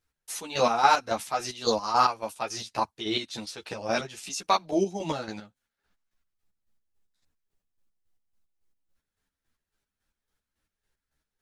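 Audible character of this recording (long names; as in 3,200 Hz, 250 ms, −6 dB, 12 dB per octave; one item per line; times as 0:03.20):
chopped level 3.6 Hz, depth 60%, duty 40%
a shimmering, thickened sound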